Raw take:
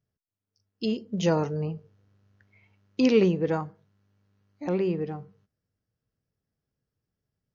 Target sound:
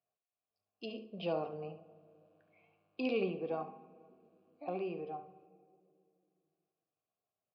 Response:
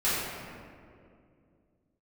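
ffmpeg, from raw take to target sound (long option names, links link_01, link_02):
-filter_complex "[0:a]bandreject=frequency=1300:width=27,bandreject=frequency=72.46:width_type=h:width=4,bandreject=frequency=144.92:width_type=h:width=4,bandreject=frequency=217.38:width_type=h:width=4,bandreject=frequency=289.84:width_type=h:width=4,bandreject=frequency=362.3:width_type=h:width=4,bandreject=frequency=434.76:width_type=h:width=4,bandreject=frequency=507.22:width_type=h:width=4,bandreject=frequency=579.68:width_type=h:width=4,bandreject=frequency=652.14:width_type=h:width=4,bandreject=frequency=724.6:width_type=h:width=4,bandreject=frequency=797.06:width_type=h:width=4,bandreject=frequency=869.52:width_type=h:width=4,bandreject=frequency=941.98:width_type=h:width=4,bandreject=frequency=1014.44:width_type=h:width=4,bandreject=frequency=1086.9:width_type=h:width=4,bandreject=frequency=1159.36:width_type=h:width=4,bandreject=frequency=1231.82:width_type=h:width=4,bandreject=frequency=1304.28:width_type=h:width=4,bandreject=frequency=1376.74:width_type=h:width=4,bandreject=frequency=1449.2:width_type=h:width=4,bandreject=frequency=1521.66:width_type=h:width=4,bandreject=frequency=1594.12:width_type=h:width=4,bandreject=frequency=1666.58:width_type=h:width=4,bandreject=frequency=1739.04:width_type=h:width=4,bandreject=frequency=1811.5:width_type=h:width=4,bandreject=frequency=1883.96:width_type=h:width=4,bandreject=frequency=1956.42:width_type=h:width=4,bandreject=frequency=2028.88:width_type=h:width=4,bandreject=frequency=2101.34:width_type=h:width=4,bandreject=frequency=2173.8:width_type=h:width=4,bandreject=frequency=2246.26:width_type=h:width=4,bandreject=frequency=2318.72:width_type=h:width=4,bandreject=frequency=2391.18:width_type=h:width=4,bandreject=frequency=2463.64:width_type=h:width=4,bandreject=frequency=2536.1:width_type=h:width=4,bandreject=frequency=2608.56:width_type=h:width=4,acrossover=split=390|3000[link_01][link_02][link_03];[link_02]acompressor=threshold=-56dB:ratio=1.5[link_04];[link_01][link_04][link_03]amix=inputs=3:normalize=0,asplit=3[link_05][link_06][link_07];[link_05]bandpass=frequency=730:width_type=q:width=8,volume=0dB[link_08];[link_06]bandpass=frequency=1090:width_type=q:width=8,volume=-6dB[link_09];[link_07]bandpass=frequency=2440:width_type=q:width=8,volume=-9dB[link_10];[link_08][link_09][link_10]amix=inputs=3:normalize=0,aecho=1:1:70:0.237,asplit=2[link_11][link_12];[1:a]atrim=start_sample=2205[link_13];[link_12][link_13]afir=irnorm=-1:irlink=0,volume=-29dB[link_14];[link_11][link_14]amix=inputs=2:normalize=0,aresample=11025,aresample=44100,volume=8.5dB"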